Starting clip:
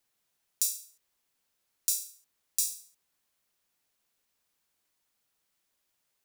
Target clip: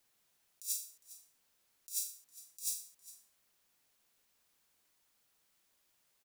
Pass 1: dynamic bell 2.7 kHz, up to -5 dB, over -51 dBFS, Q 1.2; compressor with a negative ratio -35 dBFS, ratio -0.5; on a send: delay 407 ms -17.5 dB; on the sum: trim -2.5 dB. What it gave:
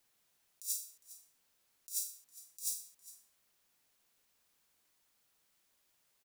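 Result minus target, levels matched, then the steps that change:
2 kHz band -3.0 dB
change: dynamic bell 1 kHz, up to -5 dB, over -51 dBFS, Q 1.2

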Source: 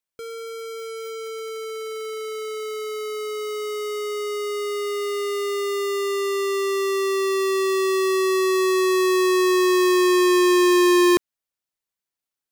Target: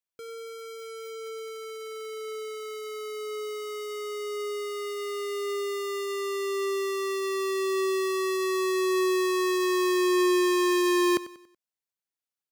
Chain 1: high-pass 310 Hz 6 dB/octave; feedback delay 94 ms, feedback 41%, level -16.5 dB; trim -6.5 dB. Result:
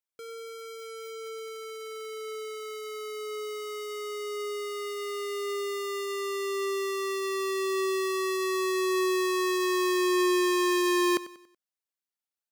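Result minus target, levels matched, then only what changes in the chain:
125 Hz band -4.0 dB
change: high-pass 90 Hz 6 dB/octave

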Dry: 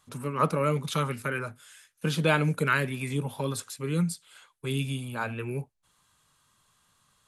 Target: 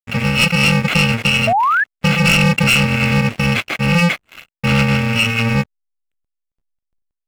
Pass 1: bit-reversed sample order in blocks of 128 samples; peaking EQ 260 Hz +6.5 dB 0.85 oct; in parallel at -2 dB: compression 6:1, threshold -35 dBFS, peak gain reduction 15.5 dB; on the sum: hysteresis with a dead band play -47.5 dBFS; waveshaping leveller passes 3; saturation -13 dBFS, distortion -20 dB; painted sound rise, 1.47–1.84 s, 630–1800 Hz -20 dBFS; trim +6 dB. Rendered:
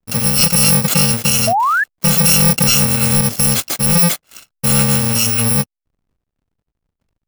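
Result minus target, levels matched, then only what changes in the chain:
2 kHz band -9.0 dB
add after bit-reversed sample order: resonant low-pass 2.4 kHz, resonance Q 3.7

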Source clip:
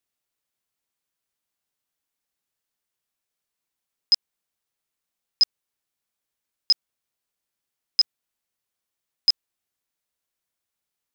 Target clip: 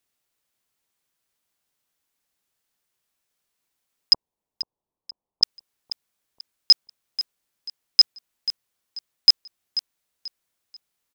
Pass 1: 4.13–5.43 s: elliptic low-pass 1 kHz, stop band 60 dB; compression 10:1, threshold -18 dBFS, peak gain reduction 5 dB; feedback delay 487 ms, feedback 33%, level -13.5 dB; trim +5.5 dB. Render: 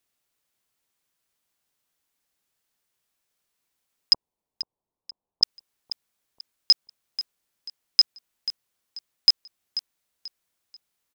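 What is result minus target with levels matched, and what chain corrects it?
compression: peak gain reduction +5 dB
4.13–5.43 s: elliptic low-pass 1 kHz, stop band 60 dB; feedback delay 487 ms, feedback 33%, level -13.5 dB; trim +5.5 dB

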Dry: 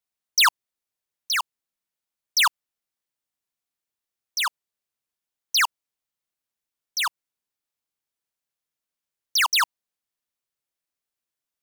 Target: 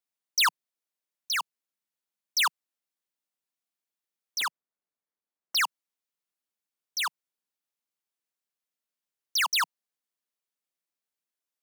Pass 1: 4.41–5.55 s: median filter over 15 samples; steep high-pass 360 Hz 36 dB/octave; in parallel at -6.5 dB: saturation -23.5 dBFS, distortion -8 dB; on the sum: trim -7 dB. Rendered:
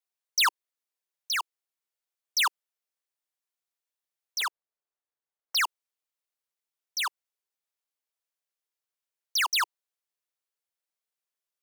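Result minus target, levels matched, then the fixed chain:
125 Hz band -11.0 dB
4.41–5.55 s: median filter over 15 samples; steep high-pass 160 Hz 36 dB/octave; in parallel at -6.5 dB: saturation -23.5 dBFS, distortion -10 dB; on the sum: trim -7 dB

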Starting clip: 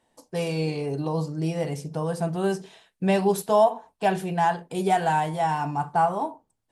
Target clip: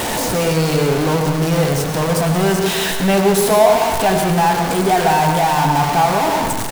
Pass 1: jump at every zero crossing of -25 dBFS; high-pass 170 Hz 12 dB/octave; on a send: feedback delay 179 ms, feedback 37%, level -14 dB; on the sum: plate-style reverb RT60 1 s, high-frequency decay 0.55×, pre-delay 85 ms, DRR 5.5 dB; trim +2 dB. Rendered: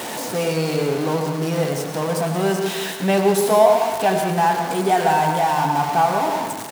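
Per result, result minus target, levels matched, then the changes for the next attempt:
jump at every zero crossing: distortion -5 dB; 125 Hz band -3.5 dB
change: jump at every zero crossing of -17 dBFS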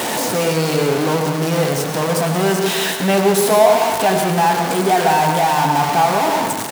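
125 Hz band -3.0 dB
remove: high-pass 170 Hz 12 dB/octave

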